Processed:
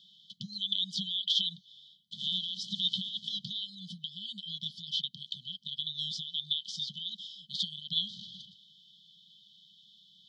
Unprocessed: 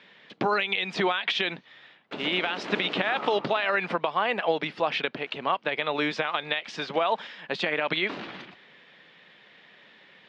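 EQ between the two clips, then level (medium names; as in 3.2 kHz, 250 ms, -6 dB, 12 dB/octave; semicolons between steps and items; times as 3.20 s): brick-wall FIR band-stop 210–3000 Hz; peaking EQ 110 Hz -10 dB 2.8 oct; +2.5 dB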